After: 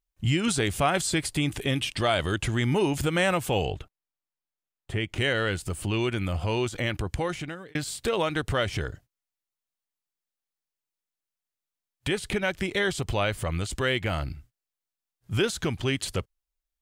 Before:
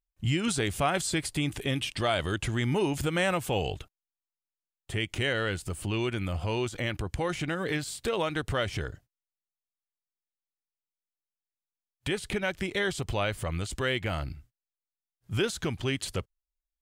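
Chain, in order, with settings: 3.65–5.18 high shelf 3300 Hz -9.5 dB; 7.14–7.75 fade out; gain +3 dB

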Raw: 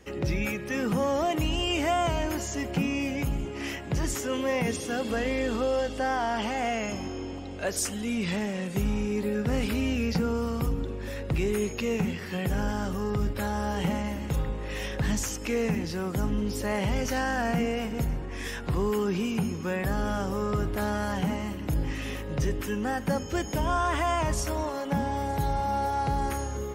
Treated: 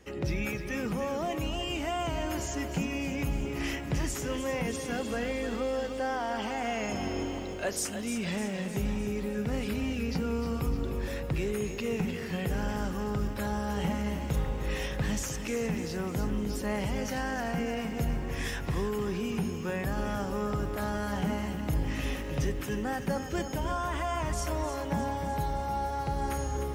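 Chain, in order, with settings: vocal rider 0.5 s; lo-fi delay 0.304 s, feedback 55%, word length 9-bit, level -9 dB; gain -4 dB

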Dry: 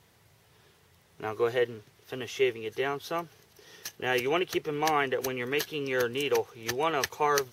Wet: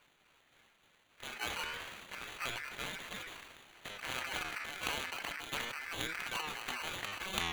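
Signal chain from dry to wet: trilling pitch shifter +4.5 st, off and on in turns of 0.136 s; reverb removal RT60 0.5 s; spectral gate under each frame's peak -10 dB weak; in parallel at -1 dB: compressor, threshold -42 dBFS, peak gain reduction 16.5 dB; on the sum: sample-and-hold 13×; ring modulator 1900 Hz; flange 0.32 Hz, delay 5.4 ms, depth 8.3 ms, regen +82%; sustainer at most 33 dB/s

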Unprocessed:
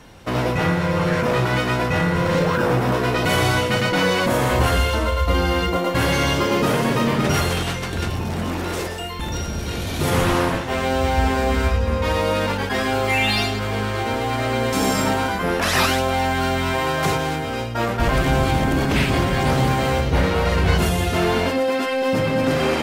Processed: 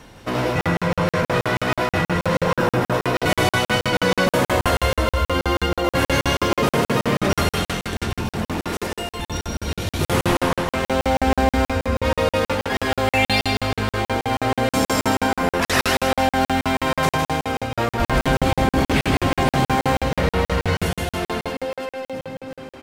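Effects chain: ending faded out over 2.92 s; notches 60/120/180 Hz; reverse; upward compressor, threshold -34 dBFS; reverse; vibrato 7.8 Hz 9.4 cents; on a send: feedback echo 0.156 s, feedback 47%, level -6.5 dB; on the sum: crackling interface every 0.16 s, samples 2048, zero, from 0.61

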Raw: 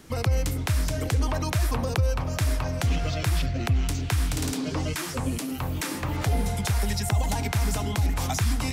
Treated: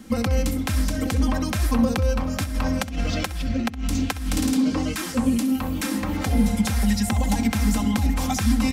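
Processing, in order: bell 220 Hz +14.5 dB 0.36 oct; 2.44–4.4 negative-ratio compressor -26 dBFS, ratio -0.5; comb 3.8 ms, depth 70%; flutter echo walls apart 11.1 m, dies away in 0.24 s

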